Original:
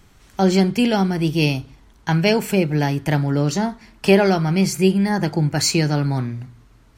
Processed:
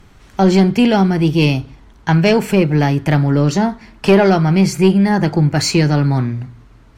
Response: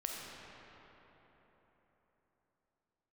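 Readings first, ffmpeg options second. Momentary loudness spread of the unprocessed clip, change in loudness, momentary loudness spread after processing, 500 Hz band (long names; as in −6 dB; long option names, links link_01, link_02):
8 LU, +5.0 dB, 9 LU, +4.5 dB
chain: -af "acontrast=88,aemphasis=mode=reproduction:type=cd,volume=-1dB"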